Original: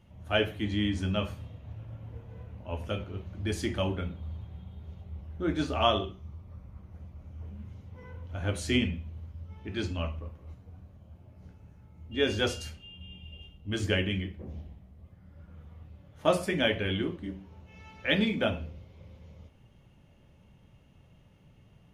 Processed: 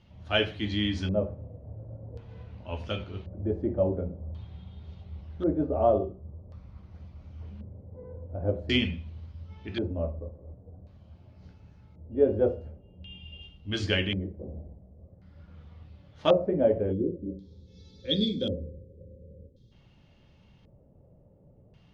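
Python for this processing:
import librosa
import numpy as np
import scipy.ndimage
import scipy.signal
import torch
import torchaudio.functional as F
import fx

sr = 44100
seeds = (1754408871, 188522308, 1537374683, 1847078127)

y = fx.filter_lfo_lowpass(x, sr, shape='square', hz=0.46, low_hz=550.0, high_hz=4600.0, q=2.6)
y = fx.spec_box(y, sr, start_s=16.93, length_s=2.79, low_hz=560.0, high_hz=3200.0, gain_db=-22)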